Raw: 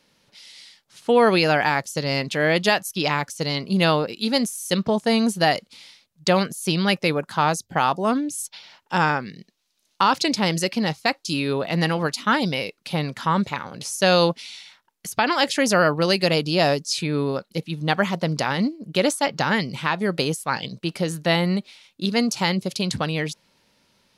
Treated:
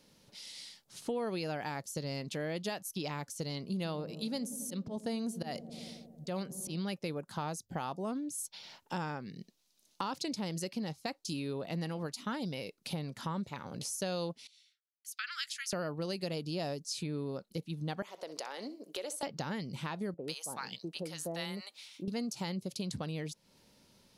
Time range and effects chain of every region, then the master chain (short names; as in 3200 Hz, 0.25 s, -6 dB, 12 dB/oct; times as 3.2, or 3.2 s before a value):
3.76–6.81 auto swell 0.131 s + dark delay 91 ms, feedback 69%, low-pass 430 Hz, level -13 dB
14.47–15.73 steep high-pass 1300 Hz 72 dB/oct + high shelf 5100 Hz -5.5 dB + three-band expander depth 100%
18.02–19.23 HPF 400 Hz 24 dB/oct + compressor 2:1, threshold -33 dBFS + flutter echo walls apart 10.7 m, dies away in 0.24 s
20.14–22.08 HPF 600 Hz 6 dB/oct + bands offset in time lows, highs 0.1 s, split 780 Hz
whole clip: bell 1800 Hz -8.5 dB 2.6 oct; compressor 3:1, threshold -41 dBFS; gain +1.5 dB